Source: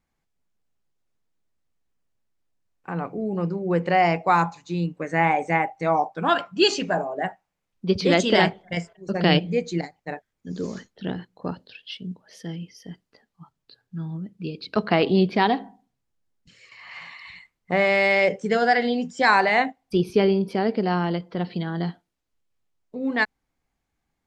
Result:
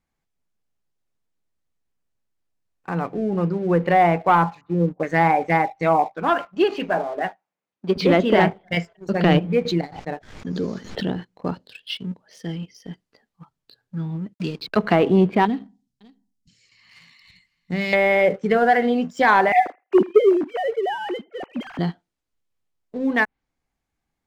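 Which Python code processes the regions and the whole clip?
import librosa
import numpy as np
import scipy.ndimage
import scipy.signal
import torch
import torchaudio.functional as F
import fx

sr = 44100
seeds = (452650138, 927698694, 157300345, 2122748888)

y = fx.chain(x, sr, fx.air_absorb(metres=320.0),
    fx.envelope_lowpass(base_hz=530.0, top_hz=1300.0, q=5.2, full_db=-21.5, direction='down'), at=(4.61, 5.03))
y = fx.chain(y, sr, fx.halfwave_gain(db=-3.0),
    fx.highpass(hz=220.0, slope=12),
    fx.high_shelf(hz=3200.0, db=-9.0), at=(6.14, 7.97))
y = fx.chain(y, sr, fx.lowpass(hz=4700.0, slope=12),
    fx.dynamic_eq(hz=2100.0, q=1.2, threshold_db=-50.0, ratio=4.0, max_db=-6),
    fx.pre_swell(db_per_s=70.0), at=(9.65, 11.17))
y = fx.chain(y, sr, fx.backlash(play_db=-43.5),
    fx.band_squash(depth_pct=70), at=(14.34, 14.76))
y = fx.chain(y, sr, fx.curve_eq(hz=(240.0, 700.0, 2600.0, 5000.0), db=(0, -20, -9, 0)),
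    fx.echo_single(ms=556, db=-22.0), at=(15.45, 17.93))
y = fx.chain(y, sr, fx.sine_speech(),
    fx.echo_thinned(ms=81, feedback_pct=16, hz=680.0, wet_db=-20.5), at=(19.52, 21.79))
y = fx.dynamic_eq(y, sr, hz=2700.0, q=1.1, threshold_db=-38.0, ratio=4.0, max_db=4)
y = fx.env_lowpass_down(y, sr, base_hz=1500.0, full_db=-17.0)
y = fx.leveller(y, sr, passes=1)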